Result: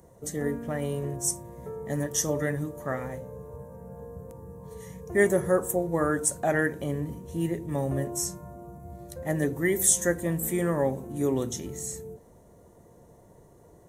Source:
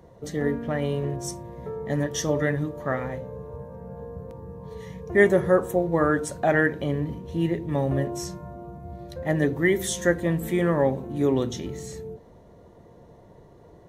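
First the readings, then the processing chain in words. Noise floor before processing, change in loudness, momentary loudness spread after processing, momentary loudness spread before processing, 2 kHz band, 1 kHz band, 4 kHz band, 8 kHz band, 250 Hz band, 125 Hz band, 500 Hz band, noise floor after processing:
-51 dBFS, -2.5 dB, 20 LU, 18 LU, -5.0 dB, -4.5 dB, -3.5 dB, +8.5 dB, -4.0 dB, -4.0 dB, -4.0 dB, -55 dBFS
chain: resonant high shelf 5800 Hz +13 dB, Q 1.5; gain -4 dB

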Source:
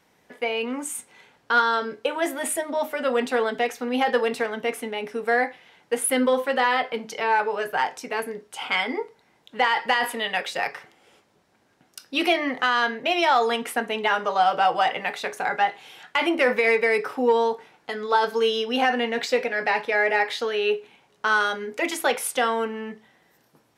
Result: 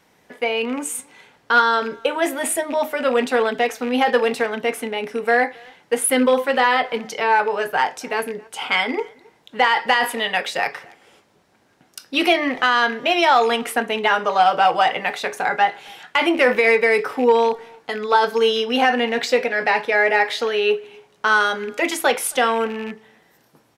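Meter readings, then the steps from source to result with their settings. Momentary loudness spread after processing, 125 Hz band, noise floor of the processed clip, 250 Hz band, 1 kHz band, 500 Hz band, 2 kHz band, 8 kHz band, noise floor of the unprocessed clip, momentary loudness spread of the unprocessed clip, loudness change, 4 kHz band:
10 LU, n/a, -59 dBFS, +4.5 dB, +4.5 dB, +4.5 dB, +4.5 dB, +4.5 dB, -63 dBFS, 10 LU, +4.5 dB, +4.5 dB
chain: rattling part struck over -36 dBFS, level -29 dBFS; speakerphone echo 0.27 s, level -25 dB; gain +4.5 dB

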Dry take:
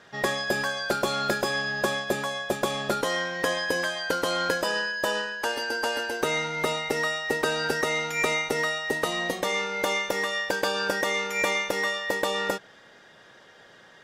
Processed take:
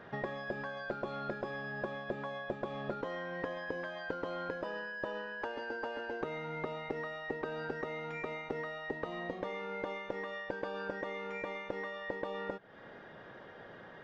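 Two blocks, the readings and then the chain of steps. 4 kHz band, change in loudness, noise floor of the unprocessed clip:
-22.0 dB, -13.0 dB, -53 dBFS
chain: compressor, threshold -39 dBFS, peak gain reduction 17.5 dB; tape spacing loss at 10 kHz 43 dB; gain +6 dB

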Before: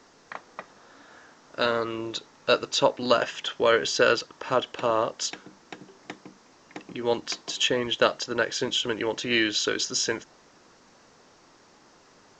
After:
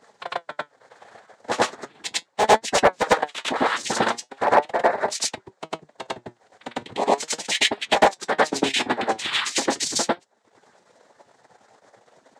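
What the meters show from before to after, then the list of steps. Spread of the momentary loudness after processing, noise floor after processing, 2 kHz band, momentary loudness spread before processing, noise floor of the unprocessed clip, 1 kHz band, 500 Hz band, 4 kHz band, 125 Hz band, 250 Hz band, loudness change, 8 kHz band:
17 LU, -65 dBFS, +3.5 dB, 21 LU, -57 dBFS, +8.5 dB, +1.5 dB, +1.5 dB, 0.0 dB, +1.5 dB, +3.0 dB, +5.0 dB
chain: median-filter separation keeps percussive; bell 720 Hz +10.5 dB 0.53 oct; in parallel at +3 dB: vocal rider within 4 dB 0.5 s; on the sum: transient shaper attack +6 dB, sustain -12 dB; noise vocoder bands 6; flange 0.38 Hz, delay 4.3 ms, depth 5 ms, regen +71%; hard clip -4 dBFS, distortion -16 dB; on a send: reverse echo 0.101 s -5.5 dB; on the sum: gain -3.5 dB

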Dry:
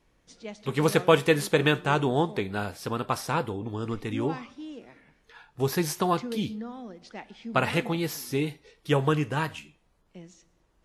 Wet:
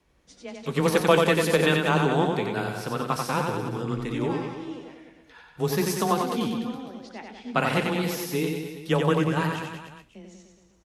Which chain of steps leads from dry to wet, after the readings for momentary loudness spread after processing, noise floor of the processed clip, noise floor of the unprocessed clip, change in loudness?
17 LU, -59 dBFS, -68 dBFS, +2.0 dB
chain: reverse bouncing-ball echo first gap 90 ms, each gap 1.1×, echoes 5; added harmonics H 8 -42 dB, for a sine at -4.5 dBFS; frequency shift +15 Hz

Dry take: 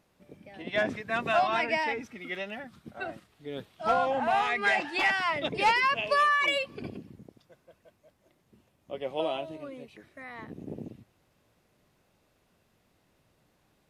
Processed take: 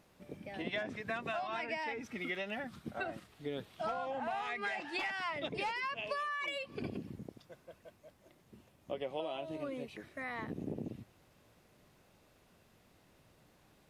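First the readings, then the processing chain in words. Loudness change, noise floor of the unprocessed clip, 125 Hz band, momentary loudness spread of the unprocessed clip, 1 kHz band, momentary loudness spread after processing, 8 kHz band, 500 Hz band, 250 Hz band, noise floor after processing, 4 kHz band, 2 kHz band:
-11.5 dB, -70 dBFS, -2.5 dB, 20 LU, -12.0 dB, 15 LU, -10.0 dB, -8.5 dB, -4.0 dB, -67 dBFS, -10.0 dB, -10.5 dB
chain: compressor 12:1, threshold -38 dBFS, peak gain reduction 18.5 dB; gain +3 dB

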